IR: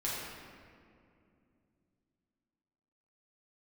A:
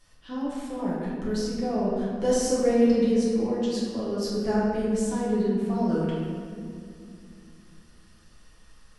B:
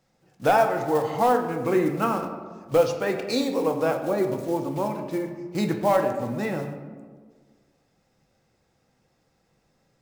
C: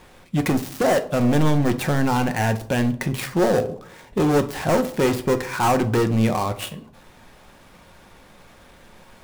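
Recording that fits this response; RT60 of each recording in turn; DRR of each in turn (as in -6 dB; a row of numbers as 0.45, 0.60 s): A; 2.5, 1.6, 0.65 s; -8.0, 4.0, 8.0 dB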